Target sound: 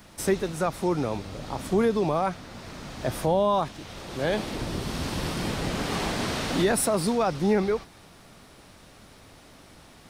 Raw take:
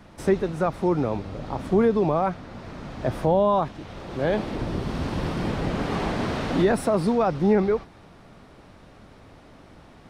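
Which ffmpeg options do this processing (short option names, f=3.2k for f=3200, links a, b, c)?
-af "crystalizer=i=4.5:c=0,volume=-3.5dB"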